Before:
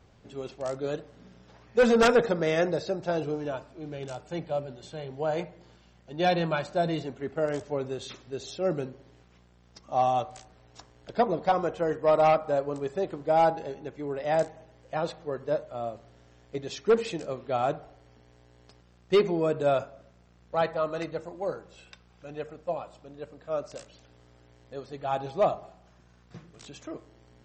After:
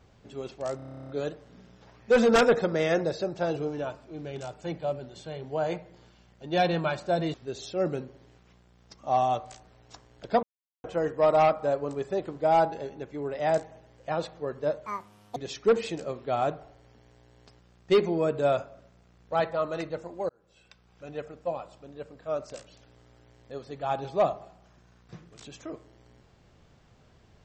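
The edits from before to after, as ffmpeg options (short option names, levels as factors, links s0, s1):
-filter_complex "[0:a]asplit=18[s0][s1][s2][s3][s4][s5][s6][s7][s8][s9][s10][s11][s12][s13][s14][s15][s16][s17];[s0]atrim=end=0.792[s18];[s1]atrim=start=0.758:end=0.792[s19];[s2]atrim=start=0.758:end=0.792[s20];[s3]atrim=start=0.758:end=0.792[s21];[s4]atrim=start=0.758:end=0.792[s22];[s5]atrim=start=0.758:end=0.792[s23];[s6]atrim=start=0.758:end=0.792[s24];[s7]atrim=start=0.758:end=0.792[s25];[s8]atrim=start=0.758:end=0.792[s26];[s9]atrim=start=0.758:end=0.792[s27];[s10]atrim=start=0.758:end=0.792[s28];[s11]atrim=start=0.758:end=7.012[s29];[s12]atrim=start=8.188:end=11.28,asetpts=PTS-STARTPTS,afade=t=out:st=3.088:d=0.004:c=hsin[s30];[s13]atrim=start=11.28:end=11.69,asetpts=PTS-STARTPTS,volume=0[s31];[s14]atrim=start=11.69:end=15.714,asetpts=PTS-STARTPTS,afade=t=in:d=0.004:c=hsin[s32];[s15]atrim=start=15.71:end=16.58,asetpts=PTS-STARTPTS,asetrate=76293,aresample=44100,atrim=end_sample=22177,asetpts=PTS-STARTPTS[s33];[s16]atrim=start=16.576:end=21.51,asetpts=PTS-STARTPTS,afade=t=out:st=4.93:d=0.004:c=hsin[s34];[s17]atrim=start=21.51,asetpts=PTS-STARTPTS,afade=t=in:d=0.77[s35];[s18][s19]acrossfade=d=0.004:c1=hsin:c2=hsin[s36];[s36][s20]acrossfade=d=0.004:c1=hsin:c2=hsin[s37];[s37][s21]acrossfade=d=0.004:c1=hsin:c2=hsin[s38];[s38][s22]acrossfade=d=0.004:c1=hsin:c2=hsin[s39];[s39][s23]acrossfade=d=0.004:c1=hsin:c2=hsin[s40];[s40][s24]acrossfade=d=0.004:c1=hsin:c2=hsin[s41];[s41][s25]acrossfade=d=0.004:c1=hsin:c2=hsin[s42];[s42][s26]acrossfade=d=0.004:c1=hsin:c2=hsin[s43];[s43][s27]acrossfade=d=0.004:c1=hsin:c2=hsin[s44];[s44][s28]acrossfade=d=0.004:c1=hsin:c2=hsin[s45];[s45][s29]acrossfade=d=0.004:c1=hsin:c2=hsin[s46];[s30][s31][s32]concat=n=3:v=0:a=1[s47];[s46][s47]acrossfade=d=0.004:c1=hsin:c2=hsin[s48];[s48][s33]acrossfade=d=0.004:c1=hsin:c2=hsin[s49];[s34][s35]concat=n=2:v=0:a=1[s50];[s49][s50]acrossfade=d=0.004:c1=hsin:c2=hsin"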